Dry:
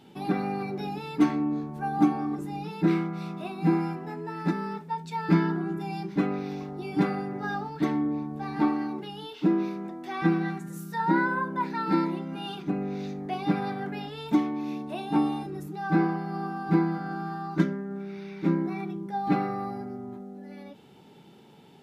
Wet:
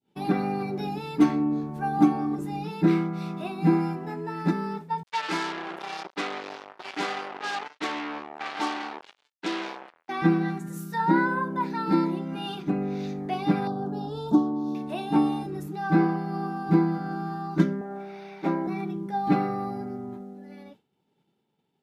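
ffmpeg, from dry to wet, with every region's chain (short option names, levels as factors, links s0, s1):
-filter_complex "[0:a]asettb=1/sr,asplit=3[s0][s1][s2];[s0]atrim=end=5.034[s3];[s1]atrim=start=5.03:end=10.09,asetpts=PTS-STARTPTS,afade=t=in:d=0.004:c=qsin,afade=t=out:st=5.056:d=0.004:c=qsin,acrusher=bits=4:mix=0:aa=0.5,highpass=590,lowpass=3300,aemphasis=mode=production:type=75kf[s4];[s2]atrim=start=10.086[s5];[s3][s4]acrossfade=d=0.004:c1=hsin:c2=qsin[s6];[s6][s5]acrossfade=d=0.004:c1=qsin:c2=hsin,asettb=1/sr,asplit=3[s7][s8][s9];[s7]atrim=end=13.674[s10];[s8]atrim=start=13.67:end=14.75,asetpts=PTS-STARTPTS,afade=t=in:d=0.004:c=qsin,afade=t=out:st=1.076:d=0.004:c=qsin,asuperstop=centerf=2200:order=4:qfactor=0.76,aemphasis=mode=reproduction:type=cd,acompressor=mode=upward:threshold=0.0355:ratio=2.5:attack=3.2:release=140:knee=2.83:detection=peak[s11];[s9]atrim=start=14.746[s12];[s10][s11]acrossfade=d=0.004:c1=hsin:c2=qsin[s13];[s13][s12]acrossfade=d=0.004:c1=qsin:c2=hsin,asettb=1/sr,asplit=3[s14][s15][s16];[s14]atrim=end=17.814[s17];[s15]atrim=start=17.81:end=18.67,asetpts=PTS-STARTPTS,afade=t=in:d=0.004:c=qsin,afade=t=out:st=0.856:d=0.004:c=qsin,highpass=f=460:p=1,equalizer=f=720:w=1.9:g=13[s18];[s16]atrim=start=18.666[s19];[s17][s18]acrossfade=d=0.004:c1=hsin:c2=qsin[s20];[s20][s19]acrossfade=d=0.004:c1=qsin:c2=hsin,agate=range=0.0224:threshold=0.0126:ratio=3:detection=peak,adynamicequalizer=threshold=0.00708:dfrequency=1900:dqfactor=0.78:tfrequency=1900:tqfactor=0.78:attack=5:release=100:ratio=0.375:range=2.5:mode=cutabove:tftype=bell,volume=1.33"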